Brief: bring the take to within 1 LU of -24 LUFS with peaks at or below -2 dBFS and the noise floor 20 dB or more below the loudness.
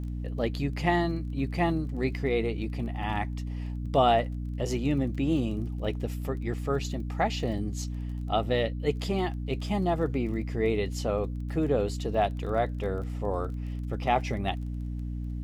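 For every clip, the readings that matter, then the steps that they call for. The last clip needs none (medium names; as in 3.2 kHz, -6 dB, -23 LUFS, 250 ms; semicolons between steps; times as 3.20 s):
tick rate 21 per s; hum 60 Hz; highest harmonic 300 Hz; hum level -31 dBFS; loudness -29.5 LUFS; peak level -10.5 dBFS; loudness target -24.0 LUFS
-> de-click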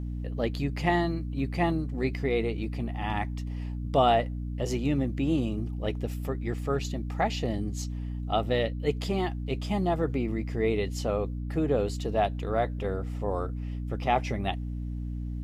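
tick rate 0 per s; hum 60 Hz; highest harmonic 300 Hz; hum level -31 dBFS
-> de-hum 60 Hz, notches 5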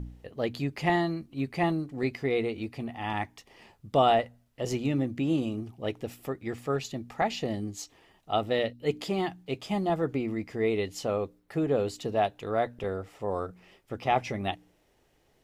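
hum not found; loudness -30.5 LUFS; peak level -11.0 dBFS; loudness target -24.0 LUFS
-> trim +6.5 dB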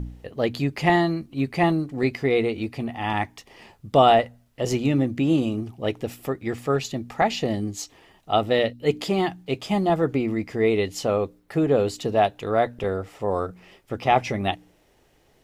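loudness -24.0 LUFS; peak level -4.5 dBFS; noise floor -61 dBFS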